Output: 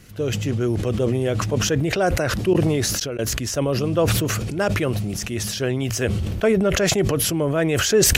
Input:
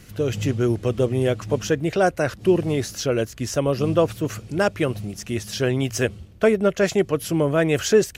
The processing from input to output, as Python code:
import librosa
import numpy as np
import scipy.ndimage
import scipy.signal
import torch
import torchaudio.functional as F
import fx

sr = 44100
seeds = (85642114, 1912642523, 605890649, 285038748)

y = fx.gate_flip(x, sr, shuts_db=-18.0, range_db=-27, at=(2.53, 3.19))
y = fx.sustainer(y, sr, db_per_s=21.0)
y = y * librosa.db_to_amplitude(-2.0)